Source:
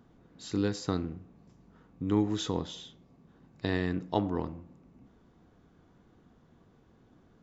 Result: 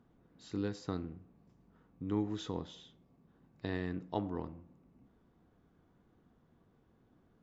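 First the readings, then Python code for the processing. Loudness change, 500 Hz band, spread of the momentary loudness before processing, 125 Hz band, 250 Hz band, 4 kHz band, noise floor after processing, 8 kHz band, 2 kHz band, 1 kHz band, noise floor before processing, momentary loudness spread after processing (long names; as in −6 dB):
−7.0 dB, −7.0 dB, 17 LU, −7.0 dB, −7.0 dB, −10.0 dB, −70 dBFS, can't be measured, −8.0 dB, −7.0 dB, −63 dBFS, 17 LU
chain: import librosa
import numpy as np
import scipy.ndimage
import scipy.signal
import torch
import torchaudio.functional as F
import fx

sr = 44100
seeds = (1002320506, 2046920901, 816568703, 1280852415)

y = fx.high_shelf(x, sr, hz=5500.0, db=-9.5)
y = y * librosa.db_to_amplitude(-7.0)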